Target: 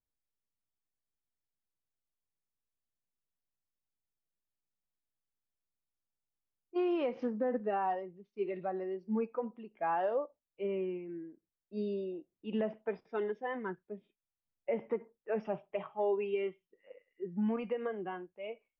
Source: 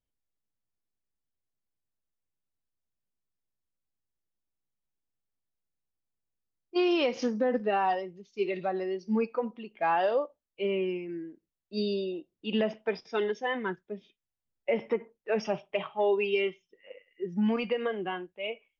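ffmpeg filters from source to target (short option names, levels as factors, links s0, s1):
-af "lowpass=1600,volume=0.531"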